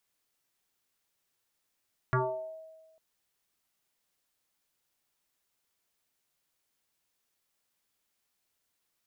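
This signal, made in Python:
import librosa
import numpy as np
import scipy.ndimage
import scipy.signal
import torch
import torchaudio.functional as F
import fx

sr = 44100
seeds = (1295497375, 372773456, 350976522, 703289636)

y = fx.fm2(sr, length_s=0.85, level_db=-23.0, carrier_hz=640.0, ratio=0.4, index=4.2, index_s=0.66, decay_s=1.31, shape='exponential')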